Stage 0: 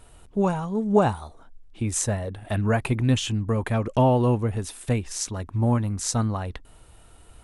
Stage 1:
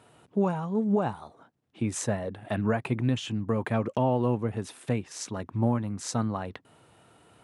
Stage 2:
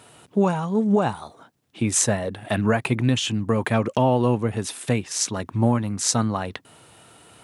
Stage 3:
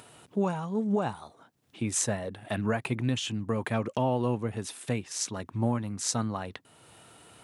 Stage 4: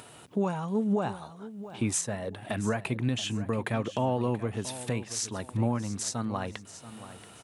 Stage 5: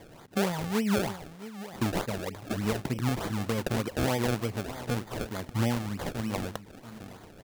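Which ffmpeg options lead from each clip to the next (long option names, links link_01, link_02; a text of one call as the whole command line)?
ffmpeg -i in.wav -af "highpass=frequency=120:width=0.5412,highpass=frequency=120:width=1.3066,highshelf=frequency=5300:gain=-12,alimiter=limit=-15dB:level=0:latency=1:release=447" out.wav
ffmpeg -i in.wav -af "highshelf=frequency=2500:gain=9.5,volume=5.5dB" out.wav
ffmpeg -i in.wav -af "acompressor=mode=upward:threshold=-39dB:ratio=2.5,volume=-8dB" out.wav
ffmpeg -i in.wav -af "alimiter=limit=-21dB:level=0:latency=1:release=364,aecho=1:1:681|1362|2043:0.188|0.0584|0.0181,volume=3dB" out.wav
ffmpeg -i in.wav -af "acrusher=samples=31:mix=1:aa=0.000001:lfo=1:lforange=31:lforate=3.3" out.wav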